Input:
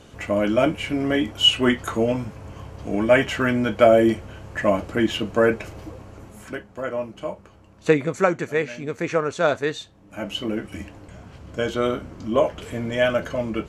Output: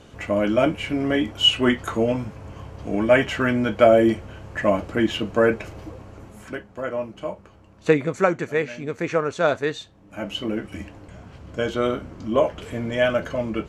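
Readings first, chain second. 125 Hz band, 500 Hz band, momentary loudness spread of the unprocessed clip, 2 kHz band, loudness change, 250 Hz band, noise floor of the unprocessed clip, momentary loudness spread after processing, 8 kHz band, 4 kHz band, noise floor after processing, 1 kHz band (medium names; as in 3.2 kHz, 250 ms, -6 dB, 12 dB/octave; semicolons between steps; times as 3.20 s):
0.0 dB, 0.0 dB, 19 LU, -0.5 dB, 0.0 dB, 0.0 dB, -50 dBFS, 18 LU, no reading, -1.0 dB, -50 dBFS, 0.0 dB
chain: treble shelf 6.8 kHz -5.5 dB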